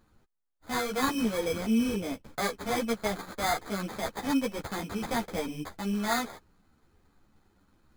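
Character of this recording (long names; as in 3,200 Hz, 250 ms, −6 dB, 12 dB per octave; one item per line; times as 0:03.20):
aliases and images of a low sample rate 2,800 Hz, jitter 0%
a shimmering, thickened sound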